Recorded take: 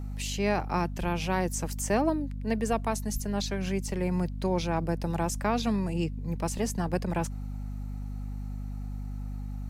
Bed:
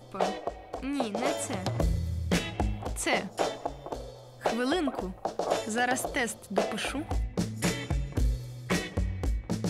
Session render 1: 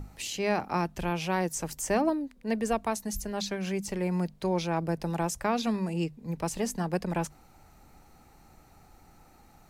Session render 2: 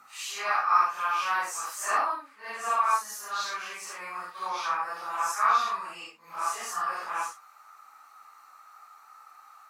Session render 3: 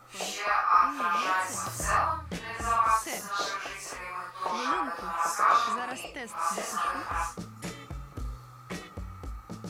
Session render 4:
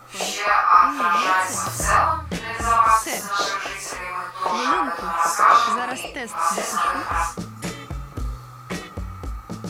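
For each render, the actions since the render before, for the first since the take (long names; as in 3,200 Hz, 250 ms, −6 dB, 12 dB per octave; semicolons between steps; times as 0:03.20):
mains-hum notches 50/100/150/200/250 Hz
random phases in long frames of 200 ms; high-pass with resonance 1,200 Hz, resonance Q 10
mix in bed −10 dB
level +8.5 dB; brickwall limiter −3 dBFS, peak gain reduction 1 dB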